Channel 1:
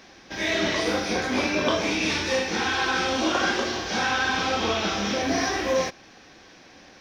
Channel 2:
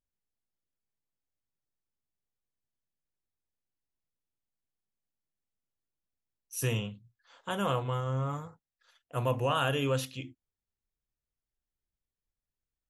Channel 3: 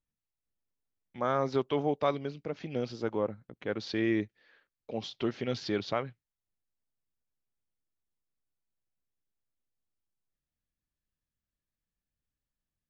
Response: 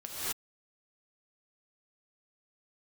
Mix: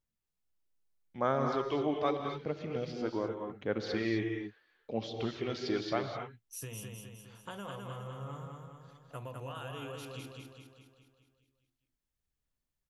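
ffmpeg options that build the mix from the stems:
-filter_complex "[1:a]acompressor=threshold=-37dB:ratio=10,volume=-3.5dB,asplit=2[link_01][link_02];[link_02]volume=-3.5dB[link_03];[2:a]aphaser=in_gain=1:out_gain=1:delay=3.2:decay=0.39:speed=0.8:type=sinusoidal,volume=-6dB,asplit=2[link_04][link_05];[link_05]volume=-5.5dB[link_06];[3:a]atrim=start_sample=2205[link_07];[link_06][link_07]afir=irnorm=-1:irlink=0[link_08];[link_03]aecho=0:1:206|412|618|824|1030|1236|1442|1648:1|0.54|0.292|0.157|0.085|0.0459|0.0248|0.0134[link_09];[link_01][link_04][link_08][link_09]amix=inputs=4:normalize=0"

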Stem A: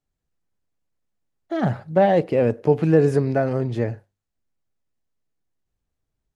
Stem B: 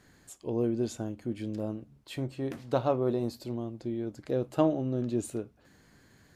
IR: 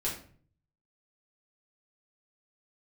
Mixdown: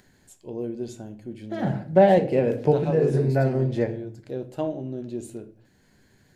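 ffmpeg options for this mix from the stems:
-filter_complex "[0:a]volume=-2dB,asplit=2[link_01][link_02];[link_02]volume=-11dB[link_03];[1:a]acompressor=mode=upward:threshold=-51dB:ratio=2.5,volume=-5dB,asplit=3[link_04][link_05][link_06];[link_05]volume=-11dB[link_07];[link_06]apad=whole_len=280269[link_08];[link_01][link_08]sidechaincompress=threshold=-40dB:ratio=8:attack=10:release=223[link_09];[2:a]atrim=start_sample=2205[link_10];[link_03][link_07]amix=inputs=2:normalize=0[link_11];[link_11][link_10]afir=irnorm=-1:irlink=0[link_12];[link_09][link_04][link_12]amix=inputs=3:normalize=0,equalizer=frequency=1200:width_type=o:width=0.23:gain=-10.5"

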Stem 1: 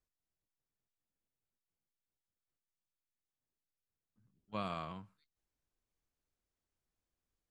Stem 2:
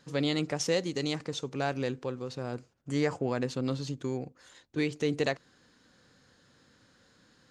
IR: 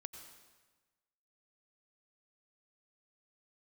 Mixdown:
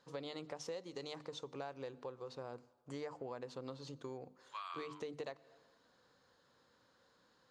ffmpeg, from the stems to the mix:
-filter_complex "[0:a]highpass=frequency=1200:width=0.5412,highpass=frequency=1200:width=1.3066,volume=-5.5dB[link_01];[1:a]bandreject=frequency=50:width_type=h:width=6,bandreject=frequency=100:width_type=h:width=6,bandreject=frequency=150:width_type=h:width=6,bandreject=frequency=200:width_type=h:width=6,bandreject=frequency=250:width_type=h:width=6,bandreject=frequency=300:width_type=h:width=6,volume=-15dB,asplit=2[link_02][link_03];[link_03]volume=-13.5dB[link_04];[2:a]atrim=start_sample=2205[link_05];[link_04][link_05]afir=irnorm=-1:irlink=0[link_06];[link_01][link_02][link_06]amix=inputs=3:normalize=0,equalizer=frequency=500:width_type=o:width=1:gain=7,equalizer=frequency=1000:width_type=o:width=1:gain=11,equalizer=frequency=4000:width_type=o:width=1:gain=5,acompressor=threshold=-42dB:ratio=5"

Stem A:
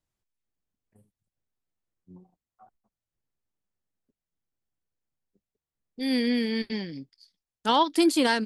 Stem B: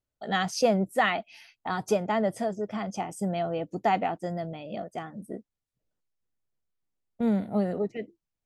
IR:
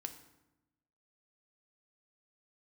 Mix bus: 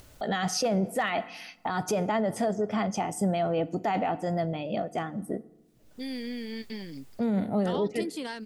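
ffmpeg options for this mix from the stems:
-filter_complex "[0:a]acompressor=threshold=-32dB:ratio=4,volume=-2.5dB[link_01];[1:a]acompressor=mode=upward:threshold=-35dB:ratio=2.5,asoftclip=type=hard:threshold=-14dB,volume=2dB,asplit=2[link_02][link_03];[link_03]volume=-4dB[link_04];[2:a]atrim=start_sample=2205[link_05];[link_04][link_05]afir=irnorm=-1:irlink=0[link_06];[link_01][link_02][link_06]amix=inputs=3:normalize=0,alimiter=limit=-19.5dB:level=0:latency=1:release=23"

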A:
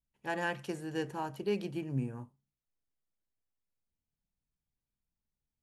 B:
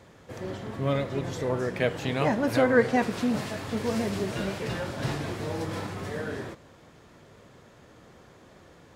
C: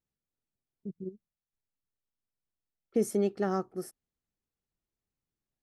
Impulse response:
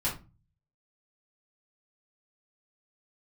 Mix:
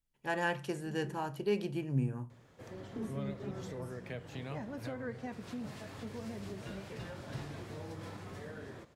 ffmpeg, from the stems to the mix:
-filter_complex "[0:a]volume=0dB,asplit=2[link_01][link_02];[link_02]volume=-18.5dB[link_03];[1:a]acrossover=split=170[link_04][link_05];[link_05]acompressor=threshold=-35dB:ratio=2.5[link_06];[link_04][link_06]amix=inputs=2:normalize=0,adelay=2300,volume=-10dB[link_07];[2:a]acrossover=split=280[link_08][link_09];[link_09]acompressor=threshold=-48dB:ratio=2.5[link_10];[link_08][link_10]amix=inputs=2:normalize=0,volume=-12.5dB,asplit=2[link_11][link_12];[link_12]volume=-4dB[link_13];[3:a]atrim=start_sample=2205[link_14];[link_03][link_13]amix=inputs=2:normalize=0[link_15];[link_15][link_14]afir=irnorm=-1:irlink=0[link_16];[link_01][link_07][link_11][link_16]amix=inputs=4:normalize=0"

